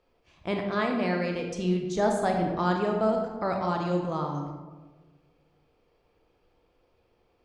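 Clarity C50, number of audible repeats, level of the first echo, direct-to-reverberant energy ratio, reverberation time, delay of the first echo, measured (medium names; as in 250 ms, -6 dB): 4.0 dB, no echo, no echo, 2.0 dB, 1.3 s, no echo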